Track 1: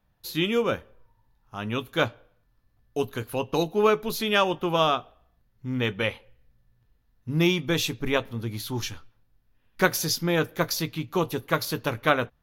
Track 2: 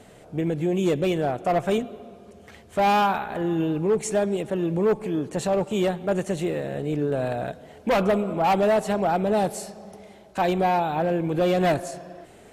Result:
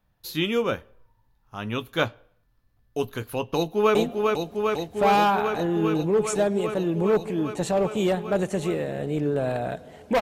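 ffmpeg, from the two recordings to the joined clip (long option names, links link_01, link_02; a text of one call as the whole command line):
ffmpeg -i cue0.wav -i cue1.wav -filter_complex "[0:a]apad=whole_dur=10.21,atrim=end=10.21,atrim=end=3.952[link_01];[1:a]atrim=start=1.708:end=7.97[link_02];[link_01][link_02]acrossfade=duration=0.004:curve1=hsin:curve2=hsin,asplit=2[link_03][link_04];[link_04]afade=type=in:start_time=3.55:duration=0.01,afade=type=out:start_time=3.95:duration=0.01,aecho=0:1:400|800|1200|1600|2000|2400|2800|3200|3600|4000|4400|4800:0.707946|0.601754|0.511491|0.434767|0.369552|0.314119|0.267001|0.226951|0.192909|0.163972|0.139376|0.11847[link_05];[link_03][link_05]amix=inputs=2:normalize=0" out.wav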